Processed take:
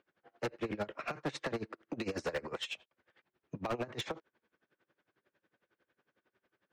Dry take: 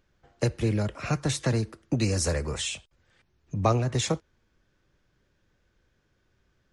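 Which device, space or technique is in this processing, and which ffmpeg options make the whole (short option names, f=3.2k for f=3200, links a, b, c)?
helicopter radio: -af "highpass=310,lowpass=2.7k,aeval=exprs='val(0)*pow(10,-23*(0.5-0.5*cos(2*PI*11*n/s))/20)':c=same,asoftclip=type=hard:threshold=-34dB,volume=3.5dB"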